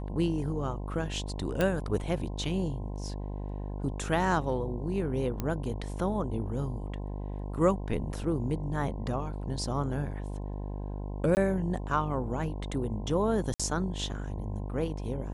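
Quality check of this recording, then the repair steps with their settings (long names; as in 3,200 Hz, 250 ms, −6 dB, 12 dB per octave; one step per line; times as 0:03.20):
mains buzz 50 Hz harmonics 21 −36 dBFS
0:01.61: click −14 dBFS
0:05.40: click −18 dBFS
0:11.35–0:11.37: drop-out 19 ms
0:13.54–0:13.60: drop-out 56 ms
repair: click removal
hum removal 50 Hz, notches 21
repair the gap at 0:11.35, 19 ms
repair the gap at 0:13.54, 56 ms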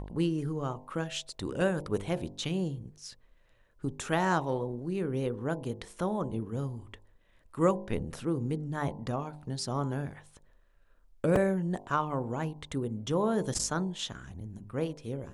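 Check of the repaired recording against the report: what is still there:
none of them is left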